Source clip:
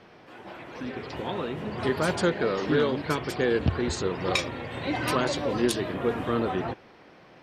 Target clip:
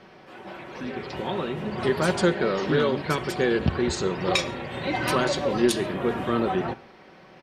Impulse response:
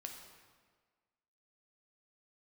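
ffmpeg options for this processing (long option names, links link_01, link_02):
-filter_complex "[0:a]aecho=1:1:5.3:0.36,asplit=2[link_01][link_02];[1:a]atrim=start_sample=2205,atrim=end_sample=3528,asetrate=23814,aresample=44100[link_03];[link_02][link_03]afir=irnorm=-1:irlink=0,volume=-10dB[link_04];[link_01][link_04]amix=inputs=2:normalize=0"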